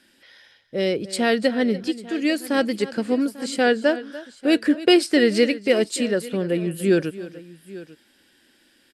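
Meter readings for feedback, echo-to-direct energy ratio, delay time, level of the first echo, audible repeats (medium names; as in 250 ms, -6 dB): no regular repeats, -14.5 dB, 292 ms, -16.5 dB, 2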